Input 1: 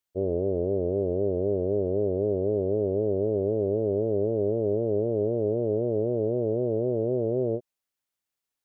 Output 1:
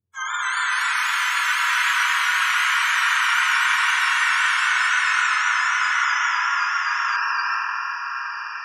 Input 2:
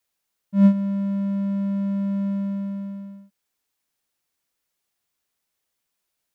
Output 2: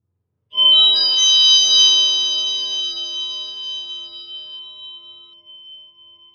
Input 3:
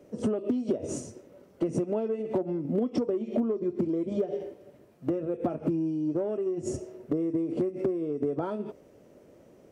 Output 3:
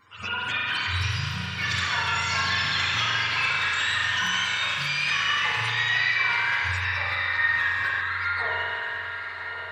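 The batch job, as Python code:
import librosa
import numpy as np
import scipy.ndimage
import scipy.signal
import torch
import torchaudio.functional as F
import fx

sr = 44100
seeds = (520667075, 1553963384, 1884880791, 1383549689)

y = fx.octave_mirror(x, sr, pivot_hz=780.0)
y = fx.dynamic_eq(y, sr, hz=3600.0, q=5.6, threshold_db=-46.0, ratio=4.0, max_db=8)
y = fx.echo_diffused(y, sr, ms=1071, feedback_pct=45, wet_db=-7.5)
y = fx.rev_spring(y, sr, rt60_s=2.8, pass_ms=(44,), chirp_ms=30, drr_db=-4.0)
y = fx.echo_pitch(y, sr, ms=298, semitones=4, count=3, db_per_echo=-3.0)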